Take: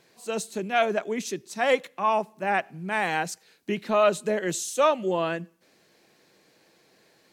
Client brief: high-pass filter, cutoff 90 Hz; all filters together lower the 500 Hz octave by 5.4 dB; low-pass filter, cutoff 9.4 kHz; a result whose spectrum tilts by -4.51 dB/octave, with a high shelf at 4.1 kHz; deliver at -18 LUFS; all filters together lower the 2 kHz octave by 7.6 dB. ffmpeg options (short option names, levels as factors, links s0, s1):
-af "highpass=90,lowpass=9400,equalizer=f=500:t=o:g=-6.5,equalizer=f=2000:t=o:g=-8,highshelf=f=4100:g=-6.5,volume=4.47"